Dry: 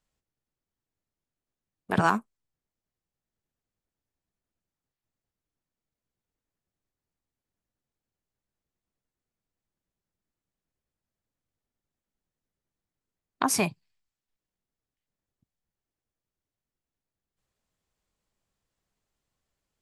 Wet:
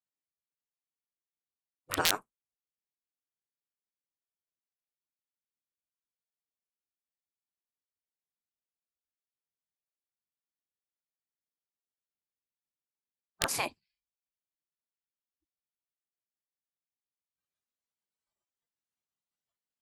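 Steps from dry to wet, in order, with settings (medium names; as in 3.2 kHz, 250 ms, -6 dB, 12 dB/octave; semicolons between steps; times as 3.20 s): spectral noise reduction 17 dB; integer overflow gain 11 dB; spectral gate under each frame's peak -10 dB weak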